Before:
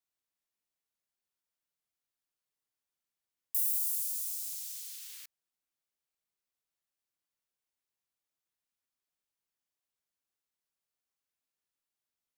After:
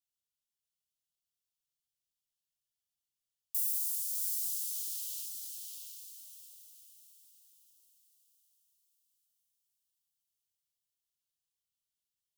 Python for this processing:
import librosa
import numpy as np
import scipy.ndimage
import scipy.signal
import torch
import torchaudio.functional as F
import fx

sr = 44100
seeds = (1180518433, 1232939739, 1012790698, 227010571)

p1 = scipy.signal.sosfilt(scipy.signal.cheby1(4, 1.0, [170.0, 2900.0], 'bandstop', fs=sr, output='sos'), x)
p2 = p1 + fx.echo_diffused(p1, sr, ms=663, feedback_pct=44, wet_db=-3.0, dry=0)
p3 = fx.dynamic_eq(p2, sr, hz=4600.0, q=1.1, threshold_db=-57.0, ratio=4.0, max_db=3)
y = p3 * librosa.db_to_amplitude(-1.5)